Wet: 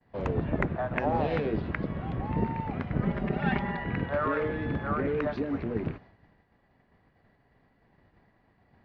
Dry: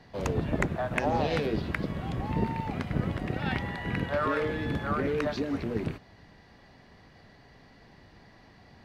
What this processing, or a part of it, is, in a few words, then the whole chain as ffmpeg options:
hearing-loss simulation: -filter_complex "[0:a]lowpass=2.2k,agate=range=-33dB:threshold=-47dB:ratio=3:detection=peak,asettb=1/sr,asplit=3[a][b][c];[a]atrim=end=3.024[d];[b]atrim=start=3.02:end=3.84,asetpts=PTS-STARTPTS,afade=t=in:d=0.004:c=qsin,afade=t=out:st=0.816:d=0.004:c=qsin,aecho=1:1:5:0.99,atrim=end_sample=36162[e];[c]atrim=start=3.836[f];[d][e]acrossfade=d=0.004:c1=hsin:c2=qsin[g];[g][f]acrossfade=d=0.004:c1=qsin:c2=hsin"

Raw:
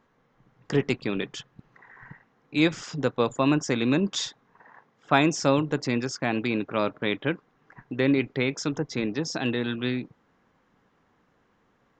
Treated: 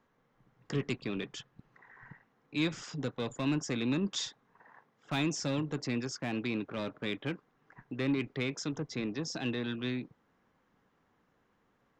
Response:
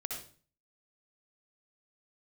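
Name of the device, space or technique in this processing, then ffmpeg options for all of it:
one-band saturation: -filter_complex "[0:a]acrossover=split=290|2300[a][b][c];[b]asoftclip=type=tanh:threshold=-30dB[d];[a][d][c]amix=inputs=3:normalize=0,volume=-6dB"

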